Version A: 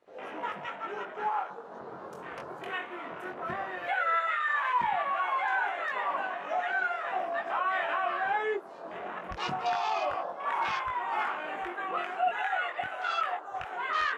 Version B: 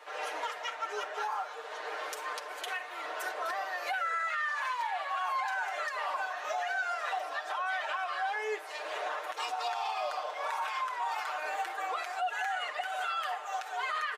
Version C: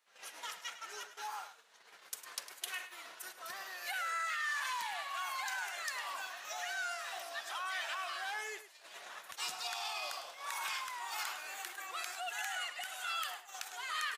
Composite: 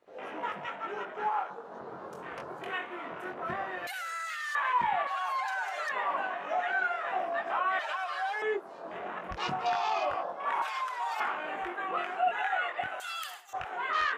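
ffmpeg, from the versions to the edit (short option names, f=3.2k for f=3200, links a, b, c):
-filter_complex "[2:a]asplit=2[a][b];[1:a]asplit=3[c][d][e];[0:a]asplit=6[f][g][h][i][j][k];[f]atrim=end=3.872[l];[a]atrim=start=3.868:end=4.552[m];[g]atrim=start=4.548:end=5.072[n];[c]atrim=start=5.068:end=5.892[o];[h]atrim=start=5.888:end=7.792[p];[d]atrim=start=7.788:end=8.422[q];[i]atrim=start=8.418:end=10.622[r];[e]atrim=start=10.618:end=11.202[s];[j]atrim=start=11.198:end=13.002[t];[b]atrim=start=12.998:end=13.532[u];[k]atrim=start=13.528[v];[l][m]acrossfade=d=0.004:c1=hsin:c2=hsin[w];[w][n]acrossfade=d=0.004:c1=hsin:c2=hsin[x];[x][o]acrossfade=d=0.004:c1=hsin:c2=hsin[y];[y][p]acrossfade=d=0.004:c1=hsin:c2=hsin[z];[z][q]acrossfade=d=0.004:c1=hsin:c2=hsin[aa];[aa][r]acrossfade=d=0.004:c1=hsin:c2=hsin[ab];[ab][s]acrossfade=d=0.004:c1=hsin:c2=hsin[ac];[ac][t]acrossfade=d=0.004:c1=hsin:c2=hsin[ad];[ad][u]acrossfade=d=0.004:c1=hsin:c2=hsin[ae];[ae][v]acrossfade=d=0.004:c1=hsin:c2=hsin"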